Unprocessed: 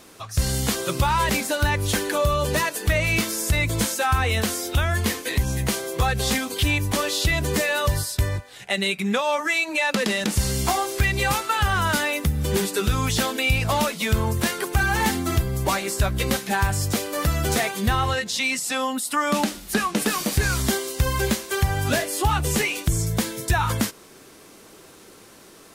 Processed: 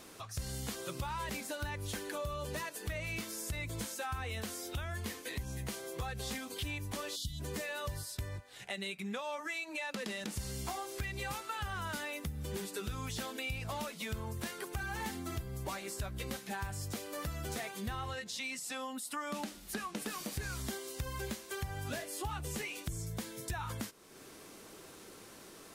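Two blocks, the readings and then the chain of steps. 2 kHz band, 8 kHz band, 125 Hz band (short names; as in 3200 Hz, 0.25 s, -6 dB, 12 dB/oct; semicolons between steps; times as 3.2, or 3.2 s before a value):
-17.0 dB, -16.0 dB, -17.5 dB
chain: spectral gain 7.16–7.4, 280–2900 Hz -27 dB; compressor 2:1, threshold -42 dBFS, peak gain reduction 14.5 dB; gain -5 dB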